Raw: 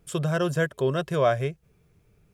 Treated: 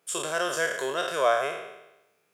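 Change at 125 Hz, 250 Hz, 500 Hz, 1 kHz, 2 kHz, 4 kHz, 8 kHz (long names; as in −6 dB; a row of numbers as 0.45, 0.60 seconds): −23.0 dB, −11.0 dB, −2.0 dB, +2.5 dB, +3.5 dB, +5.0 dB, can't be measured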